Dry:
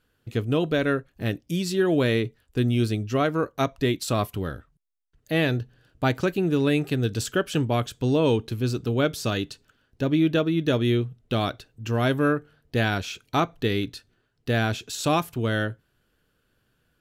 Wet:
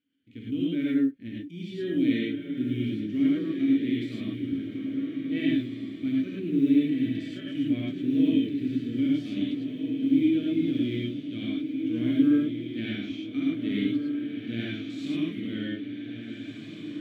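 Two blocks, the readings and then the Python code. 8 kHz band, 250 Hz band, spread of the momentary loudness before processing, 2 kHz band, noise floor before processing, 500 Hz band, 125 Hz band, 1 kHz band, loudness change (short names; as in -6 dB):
under -20 dB, +2.5 dB, 8 LU, -10.5 dB, -71 dBFS, -11.5 dB, -11.0 dB, under -25 dB, -2.5 dB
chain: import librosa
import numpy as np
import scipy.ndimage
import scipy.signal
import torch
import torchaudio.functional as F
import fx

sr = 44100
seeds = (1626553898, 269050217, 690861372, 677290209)

p1 = fx.vowel_filter(x, sr, vowel='i')
p2 = fx.level_steps(p1, sr, step_db=19)
p3 = p1 + F.gain(torch.from_numpy(p2), -1.5).numpy()
p4 = fx.quant_float(p3, sr, bits=6)
p5 = fx.hpss(p4, sr, part='percussive', gain_db=-11)
p6 = p5 + fx.echo_diffused(p5, sr, ms=1699, feedback_pct=43, wet_db=-6.0, dry=0)
y = fx.rev_gated(p6, sr, seeds[0], gate_ms=130, shape='rising', drr_db=-3.5)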